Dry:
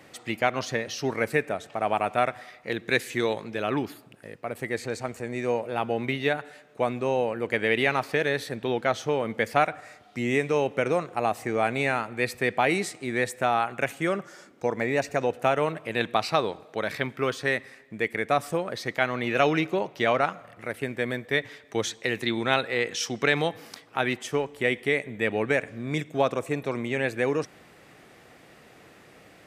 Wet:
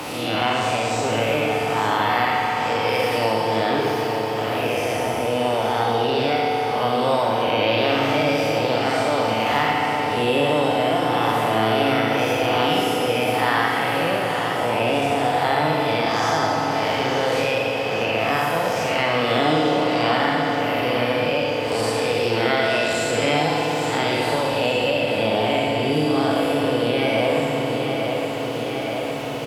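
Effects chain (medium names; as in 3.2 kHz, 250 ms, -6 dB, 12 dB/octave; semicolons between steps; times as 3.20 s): spectral blur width 199 ms; formant shift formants +5 st; on a send: feedback delay 864 ms, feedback 60%, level -11 dB; on the sum: FDN reverb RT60 3.2 s, high-frequency decay 0.6×, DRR -1 dB; three bands compressed up and down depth 70%; trim +5.5 dB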